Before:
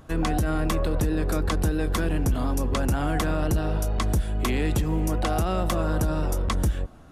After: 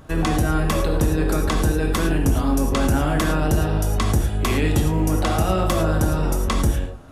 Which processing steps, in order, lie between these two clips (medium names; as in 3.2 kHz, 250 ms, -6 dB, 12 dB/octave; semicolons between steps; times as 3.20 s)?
gated-style reverb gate 130 ms flat, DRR 2 dB; trim +3.5 dB